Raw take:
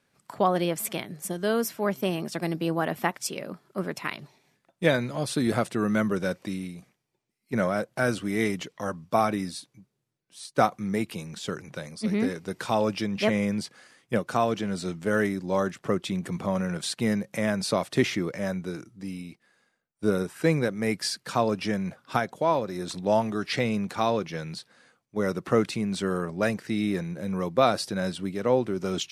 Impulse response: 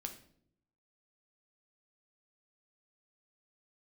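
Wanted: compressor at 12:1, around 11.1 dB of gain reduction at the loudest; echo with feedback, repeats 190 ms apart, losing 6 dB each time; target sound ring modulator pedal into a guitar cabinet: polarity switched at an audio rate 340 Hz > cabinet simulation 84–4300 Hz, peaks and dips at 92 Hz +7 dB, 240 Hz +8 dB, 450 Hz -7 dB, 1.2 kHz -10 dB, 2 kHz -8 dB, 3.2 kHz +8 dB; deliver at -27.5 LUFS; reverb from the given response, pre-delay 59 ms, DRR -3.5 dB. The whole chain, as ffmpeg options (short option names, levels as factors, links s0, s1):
-filter_complex "[0:a]acompressor=threshold=0.0447:ratio=12,aecho=1:1:190|380|570|760|950|1140:0.501|0.251|0.125|0.0626|0.0313|0.0157,asplit=2[s0][s1];[1:a]atrim=start_sample=2205,adelay=59[s2];[s1][s2]afir=irnorm=-1:irlink=0,volume=2[s3];[s0][s3]amix=inputs=2:normalize=0,aeval=exprs='val(0)*sgn(sin(2*PI*340*n/s))':c=same,highpass=84,equalizer=f=92:t=q:w=4:g=7,equalizer=f=240:t=q:w=4:g=8,equalizer=f=450:t=q:w=4:g=-7,equalizer=f=1200:t=q:w=4:g=-10,equalizer=f=2000:t=q:w=4:g=-8,equalizer=f=3200:t=q:w=4:g=8,lowpass=f=4300:w=0.5412,lowpass=f=4300:w=1.3066,volume=0.944"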